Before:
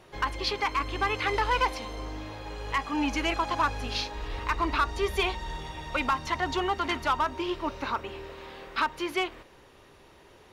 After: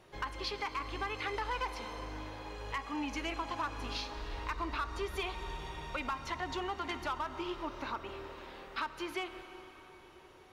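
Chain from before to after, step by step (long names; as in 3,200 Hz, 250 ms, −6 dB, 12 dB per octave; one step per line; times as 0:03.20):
dense smooth reverb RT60 4.6 s, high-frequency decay 0.75×, DRR 11.5 dB
downward compressor 2 to 1, threshold −30 dBFS, peak gain reduction 5.5 dB
level −6 dB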